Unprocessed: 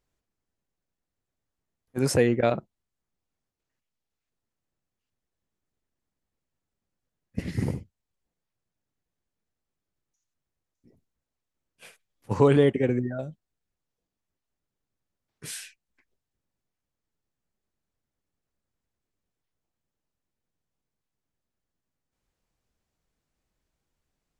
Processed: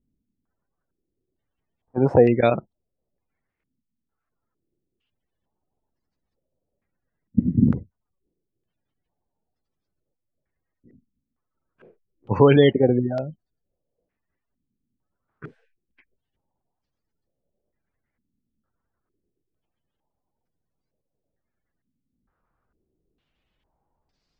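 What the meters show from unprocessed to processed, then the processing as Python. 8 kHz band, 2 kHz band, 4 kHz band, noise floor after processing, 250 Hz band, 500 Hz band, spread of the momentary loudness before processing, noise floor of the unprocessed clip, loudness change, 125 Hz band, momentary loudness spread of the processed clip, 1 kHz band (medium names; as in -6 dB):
under -30 dB, +3.0 dB, +4.5 dB, -82 dBFS, +6.5 dB, +5.5 dB, 18 LU, under -85 dBFS, +5.5 dB, +5.0 dB, 15 LU, +6.0 dB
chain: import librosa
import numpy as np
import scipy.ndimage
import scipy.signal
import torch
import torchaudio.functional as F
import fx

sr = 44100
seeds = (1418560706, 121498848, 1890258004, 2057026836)

y = fx.spec_gate(x, sr, threshold_db=-30, keep='strong')
y = fx.filter_held_lowpass(y, sr, hz=2.2, low_hz=240.0, high_hz=4800.0)
y = y * librosa.db_to_amplitude(4.5)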